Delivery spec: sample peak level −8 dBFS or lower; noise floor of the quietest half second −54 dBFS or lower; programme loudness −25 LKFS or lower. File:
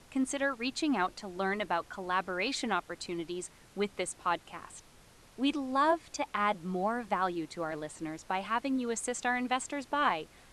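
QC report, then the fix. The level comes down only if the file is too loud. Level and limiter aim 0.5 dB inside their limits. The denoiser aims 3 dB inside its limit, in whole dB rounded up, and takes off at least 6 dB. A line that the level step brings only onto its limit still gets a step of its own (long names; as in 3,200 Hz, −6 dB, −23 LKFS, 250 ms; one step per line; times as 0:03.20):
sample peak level −16.0 dBFS: in spec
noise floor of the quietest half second −58 dBFS: in spec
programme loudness −33.0 LKFS: in spec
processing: no processing needed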